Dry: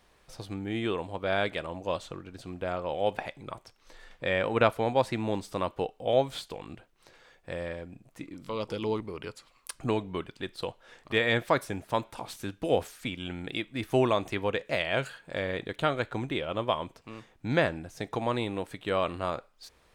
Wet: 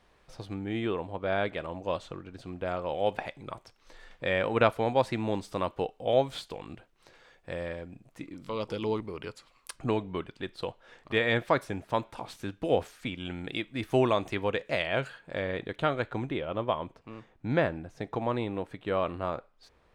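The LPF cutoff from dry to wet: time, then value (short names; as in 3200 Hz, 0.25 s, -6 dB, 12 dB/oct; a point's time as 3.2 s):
LPF 6 dB/oct
3700 Hz
from 0.85 s 2000 Hz
from 1.6 s 3800 Hz
from 2.66 s 7200 Hz
from 9.76 s 3900 Hz
from 13.25 s 6900 Hz
from 14.87 s 3100 Hz
from 16.31 s 1700 Hz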